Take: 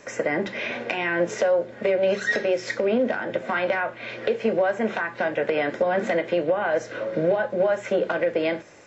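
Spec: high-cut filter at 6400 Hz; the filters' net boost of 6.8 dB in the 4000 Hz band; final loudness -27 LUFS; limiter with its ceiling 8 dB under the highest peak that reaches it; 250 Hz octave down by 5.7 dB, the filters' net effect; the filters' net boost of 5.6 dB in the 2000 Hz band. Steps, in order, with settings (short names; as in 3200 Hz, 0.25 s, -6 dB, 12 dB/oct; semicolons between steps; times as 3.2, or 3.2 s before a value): LPF 6400 Hz; bell 250 Hz -8.5 dB; bell 2000 Hz +5.5 dB; bell 4000 Hz +7.5 dB; gain -2 dB; limiter -16.5 dBFS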